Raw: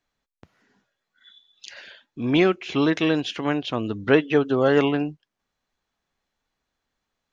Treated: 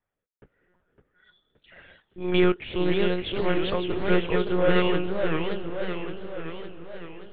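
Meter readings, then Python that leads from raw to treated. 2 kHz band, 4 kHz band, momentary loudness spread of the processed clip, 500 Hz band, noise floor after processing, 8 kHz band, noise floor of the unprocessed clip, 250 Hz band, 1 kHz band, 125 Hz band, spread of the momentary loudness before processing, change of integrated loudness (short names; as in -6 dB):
-2.5 dB, -1.5 dB, 16 LU, -2.0 dB, -85 dBFS, n/a, -82 dBFS, -4.0 dB, -2.0 dB, -1.0 dB, 11 LU, -4.0 dB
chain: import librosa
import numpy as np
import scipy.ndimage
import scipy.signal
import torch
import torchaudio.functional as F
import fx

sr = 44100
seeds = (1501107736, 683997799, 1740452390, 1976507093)

p1 = scipy.signal.sosfilt(scipy.signal.butter(2, 83.0, 'highpass', fs=sr, output='sos'), x)
p2 = fx.env_lowpass(p1, sr, base_hz=1800.0, full_db=-16.0)
p3 = p2 + 0.69 * np.pad(p2, (int(2.1 * sr / 1000.0), 0))[:len(p2)]
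p4 = 10.0 ** (-12.5 / 20.0) * np.tanh(p3 / 10.0 ** (-12.5 / 20.0))
p5 = fx.rotary(p4, sr, hz=0.75)
p6 = p5 + fx.echo_diffused(p5, sr, ms=551, feedback_pct=43, wet_db=-14, dry=0)
p7 = fx.lpc_monotone(p6, sr, seeds[0], pitch_hz=180.0, order=10)
y = fx.echo_warbled(p7, sr, ms=566, feedback_pct=58, rate_hz=2.8, cents=218, wet_db=-6)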